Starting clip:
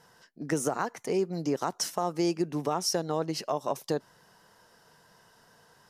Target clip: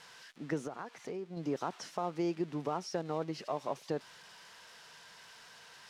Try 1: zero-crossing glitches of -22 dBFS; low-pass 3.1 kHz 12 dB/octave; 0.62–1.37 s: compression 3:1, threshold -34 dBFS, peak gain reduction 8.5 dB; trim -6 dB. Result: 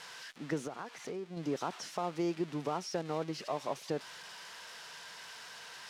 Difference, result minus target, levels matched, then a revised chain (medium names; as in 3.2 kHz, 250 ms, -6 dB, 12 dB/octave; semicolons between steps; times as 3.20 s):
zero-crossing glitches: distortion +6 dB
zero-crossing glitches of -28.5 dBFS; low-pass 3.1 kHz 12 dB/octave; 0.62–1.37 s: compression 3:1, threshold -34 dBFS, peak gain reduction 8.5 dB; trim -6 dB